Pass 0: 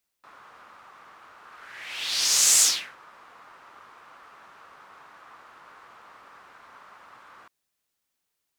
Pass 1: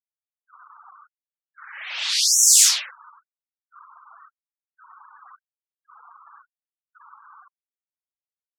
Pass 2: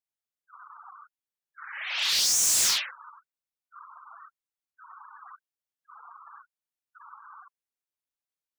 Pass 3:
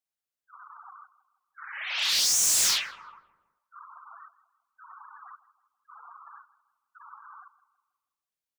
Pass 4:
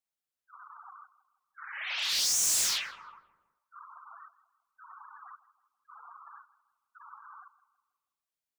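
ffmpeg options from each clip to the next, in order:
-af "afftfilt=real='re*gte(hypot(re,im),0.01)':imag='im*gte(hypot(re,im),0.01)':win_size=1024:overlap=0.75,afftfilt=real='re*gte(b*sr/1024,250*pow(5600/250,0.5+0.5*sin(2*PI*0.93*pts/sr)))':imag='im*gte(b*sr/1024,250*pow(5600/250,0.5+0.5*sin(2*PI*0.93*pts/sr)))':win_size=1024:overlap=0.75,volume=1.78"
-filter_complex "[0:a]bandreject=f=60:t=h:w=6,bandreject=f=120:t=h:w=6,bandreject=f=180:t=h:w=6,bandreject=f=240:t=h:w=6,bandreject=f=300:t=h:w=6,bandreject=f=360:t=h:w=6,bandreject=f=420:t=h:w=6,bandreject=f=480:t=h:w=6,bandreject=f=540:t=h:w=6,acrossover=split=1600[s0][s1];[s1]volume=11.9,asoftclip=hard,volume=0.0841[s2];[s0][s2]amix=inputs=2:normalize=0"
-filter_complex "[0:a]bandreject=f=60:t=h:w=6,bandreject=f=120:t=h:w=6,bandreject=f=180:t=h:w=6,bandreject=f=240:t=h:w=6,bandreject=f=300:t=h:w=6,bandreject=f=360:t=h:w=6,bandreject=f=420:t=h:w=6,bandreject=f=480:t=h:w=6,asplit=2[s0][s1];[s1]adelay=162,lowpass=f=1300:p=1,volume=0.178,asplit=2[s2][s3];[s3]adelay=162,lowpass=f=1300:p=1,volume=0.53,asplit=2[s4][s5];[s5]adelay=162,lowpass=f=1300:p=1,volume=0.53,asplit=2[s6][s7];[s7]adelay=162,lowpass=f=1300:p=1,volume=0.53,asplit=2[s8][s9];[s9]adelay=162,lowpass=f=1300:p=1,volume=0.53[s10];[s0][s2][s4][s6][s8][s10]amix=inputs=6:normalize=0"
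-af "alimiter=limit=0.075:level=0:latency=1:release=77,volume=0.794"

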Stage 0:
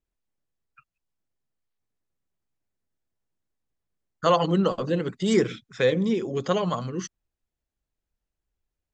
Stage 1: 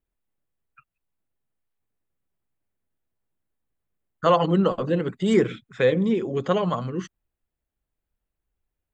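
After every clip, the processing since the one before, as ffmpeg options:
-af "equalizer=f=5500:w=1.6:g=-14,volume=1.26"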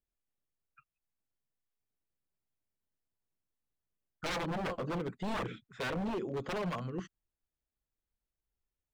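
-filter_complex "[0:a]acrossover=split=2900[s0][s1];[s1]acompressor=threshold=0.00398:ratio=4:attack=1:release=60[s2];[s0][s2]amix=inputs=2:normalize=0,aeval=exprs='0.0891*(abs(mod(val(0)/0.0891+3,4)-2)-1)':c=same,volume=0.355"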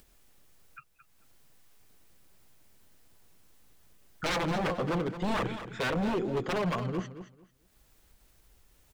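-filter_complex "[0:a]asplit=2[s0][s1];[s1]acompressor=mode=upward:threshold=0.0126:ratio=2.5,volume=0.891[s2];[s0][s2]amix=inputs=2:normalize=0,aecho=1:1:222|444|666:0.266|0.0532|0.0106"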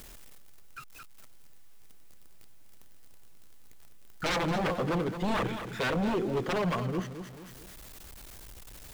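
-af "aeval=exprs='val(0)+0.5*0.0075*sgn(val(0))':c=same"

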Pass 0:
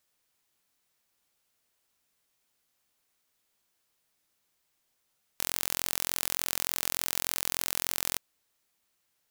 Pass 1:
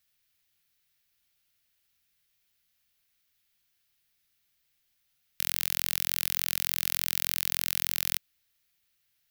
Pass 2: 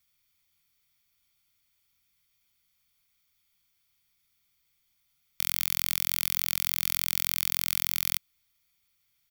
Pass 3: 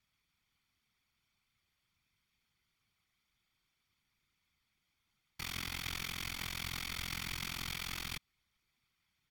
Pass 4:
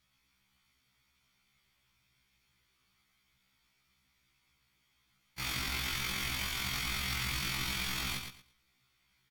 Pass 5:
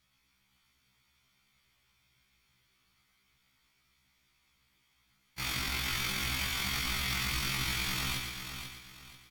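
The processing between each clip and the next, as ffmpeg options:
-af "equalizer=f=250:t=o:w=1:g=-9,equalizer=f=500:t=o:w=1:g=-11,equalizer=f=1000:t=o:w=1:g=-11,equalizer=f=8000:t=o:w=1:g=-8,volume=1.68"
-af "aecho=1:1:0.9:0.54"
-af "afftfilt=real='hypot(re,im)*cos(2*PI*random(0))':imag='hypot(re,im)*sin(2*PI*random(1))':win_size=512:overlap=0.75,alimiter=level_in=1.12:limit=0.0631:level=0:latency=1:release=38,volume=0.891,aemphasis=mode=reproduction:type=75fm,volume=2.24"
-filter_complex "[0:a]asplit=2[s0][s1];[s1]alimiter=level_in=2.66:limit=0.0631:level=0:latency=1,volume=0.376,volume=1.33[s2];[s0][s2]amix=inputs=2:normalize=0,aecho=1:1:114|228|342:0.473|0.104|0.0229,afftfilt=real='re*1.73*eq(mod(b,3),0)':imag='im*1.73*eq(mod(b,3),0)':win_size=2048:overlap=0.75,volume=1.19"
-af "aecho=1:1:490|980|1470|1960:0.398|0.123|0.0383|0.0119,volume=1.19"

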